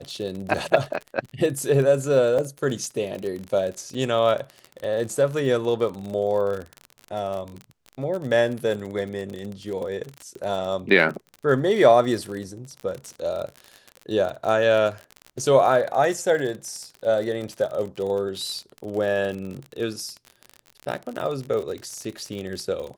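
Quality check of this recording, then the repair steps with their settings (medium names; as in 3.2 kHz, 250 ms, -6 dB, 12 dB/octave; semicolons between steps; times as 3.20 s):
crackle 45 per s -29 dBFS
2.38–2.39 s: dropout 5.6 ms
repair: de-click; interpolate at 2.38 s, 5.6 ms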